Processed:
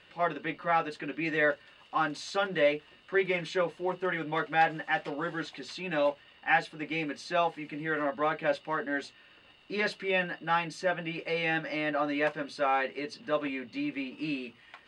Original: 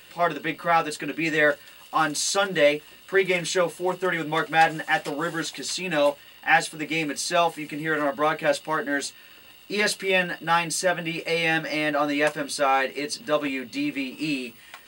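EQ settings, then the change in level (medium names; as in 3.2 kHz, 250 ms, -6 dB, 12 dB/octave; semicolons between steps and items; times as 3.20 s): low-pass 3.2 kHz 12 dB/octave; -6.0 dB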